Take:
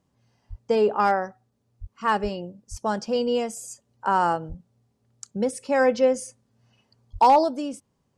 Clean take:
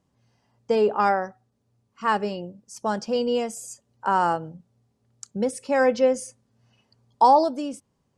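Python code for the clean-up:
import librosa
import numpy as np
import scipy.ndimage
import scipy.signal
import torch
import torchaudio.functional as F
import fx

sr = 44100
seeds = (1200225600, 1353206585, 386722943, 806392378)

y = fx.fix_declip(x, sr, threshold_db=-10.5)
y = fx.fix_deplosive(y, sr, at_s=(0.49, 1.8, 2.22, 2.7, 4.48, 7.12))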